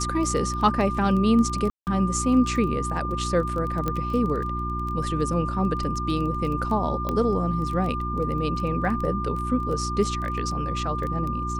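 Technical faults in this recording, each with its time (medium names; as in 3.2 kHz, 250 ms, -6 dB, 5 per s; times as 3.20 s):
crackle 13 per s -28 dBFS
hum 60 Hz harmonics 6 -30 dBFS
whine 1.2 kHz -29 dBFS
1.70–1.87 s: dropout 169 ms
3.88 s: pop -13 dBFS
7.09 s: pop -14 dBFS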